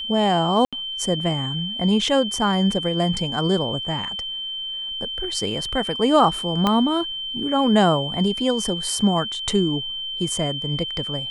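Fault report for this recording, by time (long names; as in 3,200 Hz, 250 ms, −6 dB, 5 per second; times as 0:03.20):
whistle 3,100 Hz −27 dBFS
0:00.65–0:00.73: drop-out 76 ms
0:06.67: click −7 dBFS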